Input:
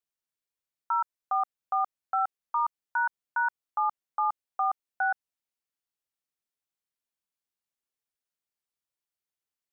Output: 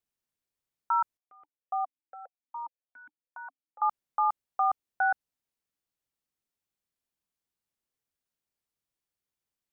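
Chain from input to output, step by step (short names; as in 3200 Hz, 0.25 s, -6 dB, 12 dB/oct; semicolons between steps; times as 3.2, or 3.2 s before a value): low shelf 410 Hz +8 dB; 1.17–3.82 vowel sequencer 7.3 Hz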